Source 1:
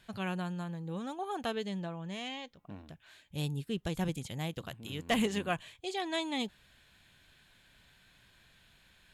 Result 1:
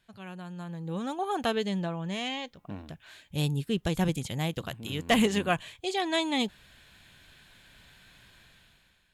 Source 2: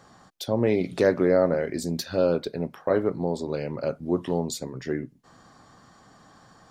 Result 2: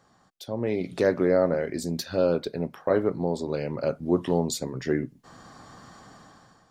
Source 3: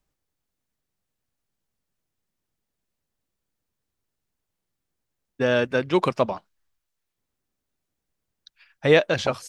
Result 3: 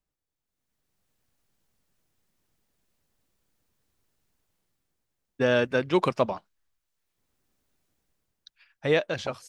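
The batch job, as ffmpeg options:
ffmpeg -i in.wav -af "dynaudnorm=framelen=220:gausssize=7:maxgain=15.5dB,volume=-8.5dB" out.wav

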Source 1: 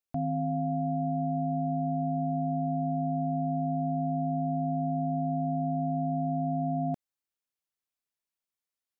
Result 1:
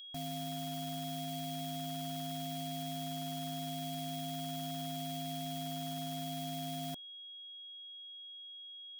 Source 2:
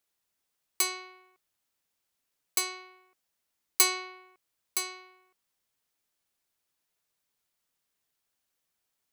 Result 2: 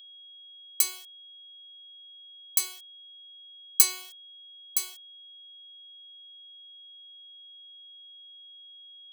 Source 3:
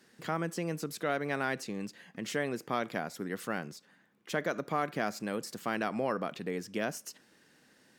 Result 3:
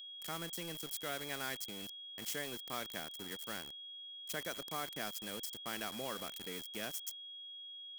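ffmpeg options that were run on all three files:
ffmpeg -i in.wav -af "aeval=exprs='val(0)*gte(abs(val(0)),0.0119)':channel_layout=same,aeval=exprs='val(0)+0.00708*sin(2*PI*3300*n/s)':channel_layout=same,crystalizer=i=4.5:c=0,volume=-12dB" out.wav

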